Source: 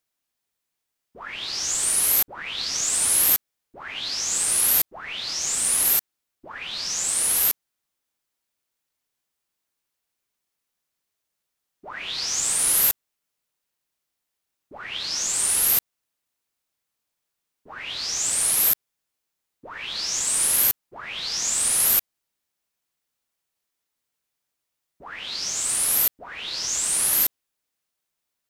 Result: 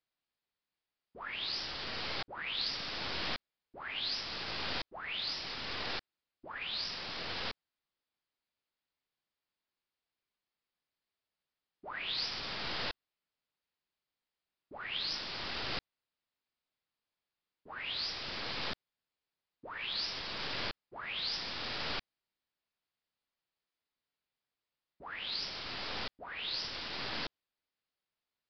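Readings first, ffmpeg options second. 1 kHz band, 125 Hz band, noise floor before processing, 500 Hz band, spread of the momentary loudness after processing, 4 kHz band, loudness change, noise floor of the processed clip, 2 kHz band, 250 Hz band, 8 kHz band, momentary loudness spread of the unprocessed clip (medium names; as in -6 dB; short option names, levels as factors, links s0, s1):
-5.5 dB, -4.0 dB, -82 dBFS, -5.0 dB, 10 LU, -7.0 dB, -16.5 dB, under -85 dBFS, -6.0 dB, -4.5 dB, -38.5 dB, 16 LU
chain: -af "aeval=exprs='0.422*(cos(1*acos(clip(val(0)/0.422,-1,1)))-cos(1*PI/2))+0.0299*(cos(4*acos(clip(val(0)/0.422,-1,1)))-cos(4*PI/2))':c=same,aresample=11025,aresample=44100,volume=0.501"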